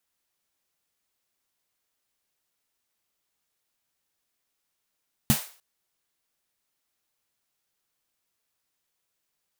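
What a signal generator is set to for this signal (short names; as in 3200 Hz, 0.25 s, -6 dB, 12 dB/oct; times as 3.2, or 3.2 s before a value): snare drum length 0.30 s, tones 140 Hz, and 220 Hz, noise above 500 Hz, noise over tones -7 dB, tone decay 0.11 s, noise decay 0.42 s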